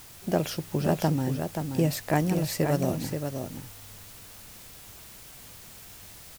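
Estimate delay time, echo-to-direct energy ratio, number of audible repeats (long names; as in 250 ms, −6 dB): 529 ms, −6.5 dB, 1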